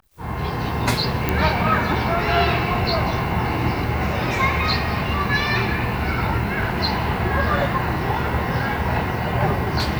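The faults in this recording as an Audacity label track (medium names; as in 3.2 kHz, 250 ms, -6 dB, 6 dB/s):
1.290000	1.290000	pop -5 dBFS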